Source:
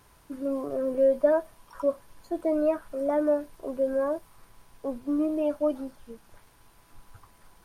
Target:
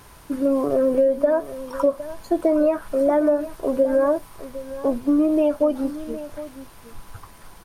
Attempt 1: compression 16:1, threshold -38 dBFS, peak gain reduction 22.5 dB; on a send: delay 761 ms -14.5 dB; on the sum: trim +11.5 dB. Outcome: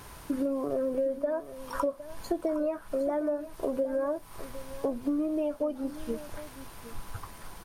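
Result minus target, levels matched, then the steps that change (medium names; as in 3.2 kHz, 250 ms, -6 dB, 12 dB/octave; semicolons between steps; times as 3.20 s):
compression: peak gain reduction +11 dB
change: compression 16:1, threshold -26 dBFS, peak gain reduction 11 dB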